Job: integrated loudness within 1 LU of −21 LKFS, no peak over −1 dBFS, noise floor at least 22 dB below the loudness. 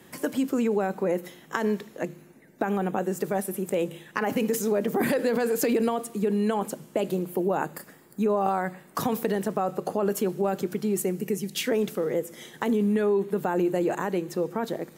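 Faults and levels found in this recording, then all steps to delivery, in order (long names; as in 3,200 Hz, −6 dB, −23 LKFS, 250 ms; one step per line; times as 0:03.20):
integrated loudness −27.5 LKFS; sample peak −9.0 dBFS; target loudness −21.0 LKFS
→ level +6.5 dB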